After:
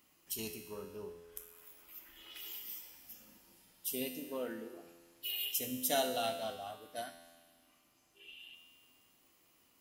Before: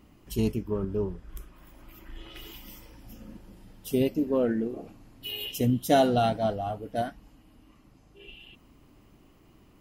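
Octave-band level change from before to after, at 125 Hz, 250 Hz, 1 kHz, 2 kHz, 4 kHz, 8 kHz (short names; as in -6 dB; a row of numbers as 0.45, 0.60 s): -24.5, -17.0, -12.0, -6.0, -3.5, +2.5 dB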